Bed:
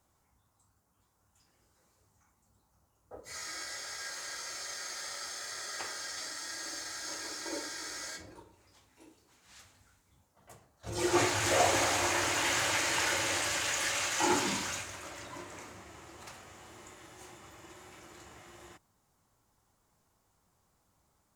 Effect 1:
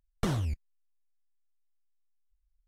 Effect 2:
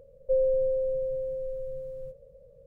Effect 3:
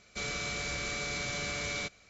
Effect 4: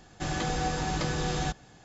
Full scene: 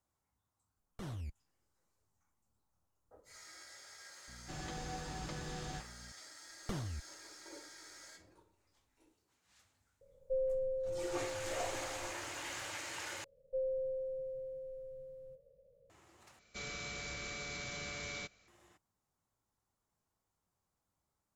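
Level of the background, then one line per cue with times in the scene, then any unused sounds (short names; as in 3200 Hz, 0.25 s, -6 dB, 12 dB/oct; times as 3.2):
bed -13.5 dB
0.76 add 1 -11 dB + limiter -25 dBFS
4.28 add 4 -14 dB + buzz 60 Hz, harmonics 4, -42 dBFS
6.46 add 1 -9 dB + vocal rider
10.01 add 2 -10.5 dB
13.24 replace with 2 -12 dB + low shelf 100 Hz -7 dB
16.39 replace with 3 -8 dB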